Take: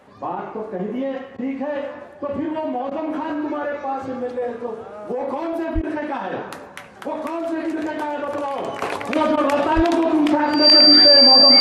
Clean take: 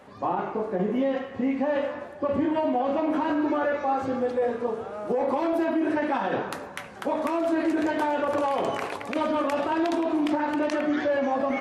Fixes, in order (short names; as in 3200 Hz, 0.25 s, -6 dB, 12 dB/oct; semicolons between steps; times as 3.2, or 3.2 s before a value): notch 4700 Hz, Q 30; 5.74–5.86 HPF 140 Hz 24 dB/oct; 9.75–9.87 HPF 140 Hz 24 dB/oct; interpolate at 1.37/2.9/5.82/9.36, 12 ms; 8.82 gain correction -7.5 dB